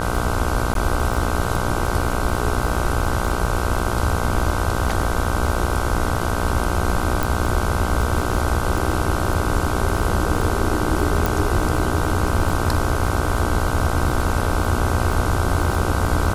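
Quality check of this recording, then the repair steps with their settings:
buzz 60 Hz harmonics 26 -25 dBFS
crackle 24 per s -24 dBFS
0.74–0.75 s: dropout 12 ms
7.23 s: pop
11.26 s: pop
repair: de-click; de-hum 60 Hz, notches 26; interpolate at 0.74 s, 12 ms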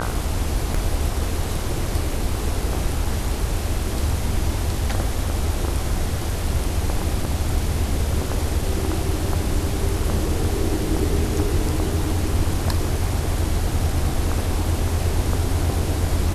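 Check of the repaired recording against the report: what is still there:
nothing left

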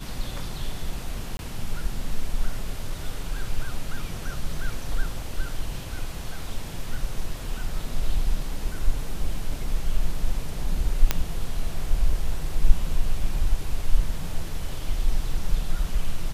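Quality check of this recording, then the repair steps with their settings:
1.37–1.39 s: dropout 21 ms
11.11 s: pop -5 dBFS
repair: de-click; interpolate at 1.37 s, 21 ms

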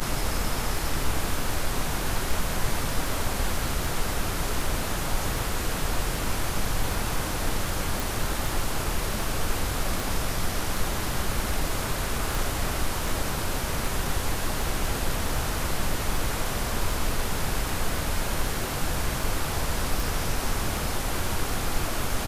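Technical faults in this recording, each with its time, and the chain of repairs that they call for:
tick 78 rpm -17 dBFS
8.00 s: pop
12.35 s: pop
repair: de-click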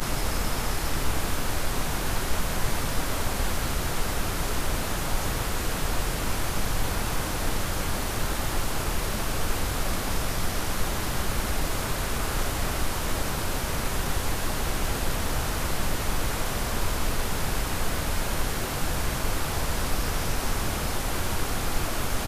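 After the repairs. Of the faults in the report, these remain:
12.35 s: pop

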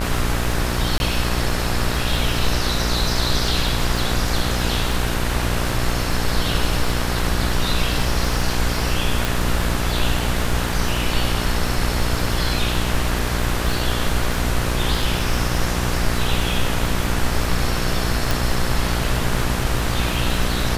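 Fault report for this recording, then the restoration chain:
buzz 60 Hz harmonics 33 -24 dBFS
crackle 36 per s -25 dBFS
0.98–1.00 s: dropout 21 ms
9.25 s: pop
18.31 s: pop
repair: de-click; de-hum 60 Hz, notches 33; interpolate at 0.98 s, 21 ms

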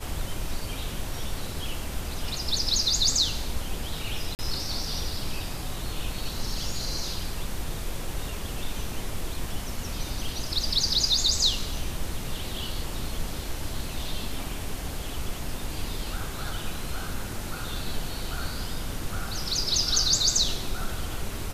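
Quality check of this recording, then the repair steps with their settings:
4.35–4.39 s: dropout 39 ms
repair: interpolate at 4.35 s, 39 ms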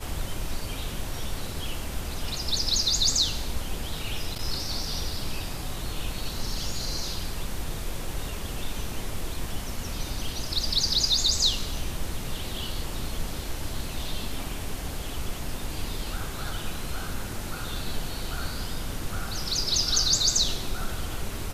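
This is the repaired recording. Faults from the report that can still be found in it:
nothing left

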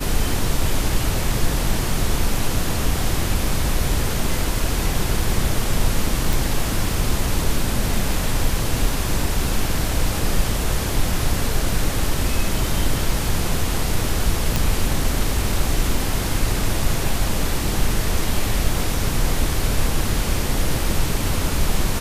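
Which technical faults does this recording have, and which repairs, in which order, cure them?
6.33 s: pop
14.56 s: pop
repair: de-click

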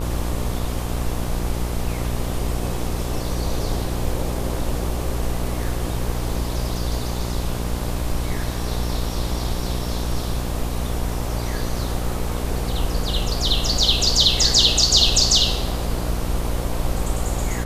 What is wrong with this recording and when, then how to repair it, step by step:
buzz 60 Hz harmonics 20 -26 dBFS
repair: de-hum 60 Hz, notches 20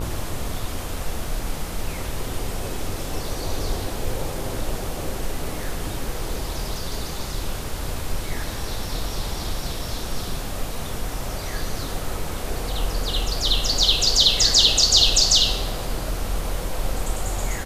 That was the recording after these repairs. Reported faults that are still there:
nothing left

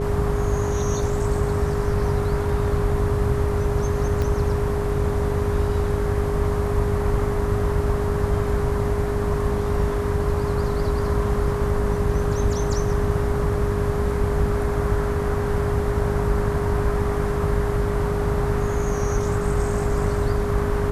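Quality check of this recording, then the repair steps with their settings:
buzz 50 Hz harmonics 13 -27 dBFS
whine 410 Hz -25 dBFS
4.22 s: pop -14 dBFS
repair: de-click; de-hum 50 Hz, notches 13; band-stop 410 Hz, Q 30

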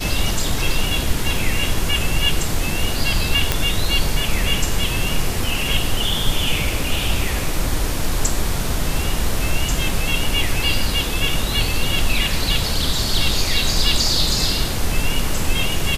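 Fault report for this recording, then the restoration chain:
3.52 s: pop 0 dBFS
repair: de-click

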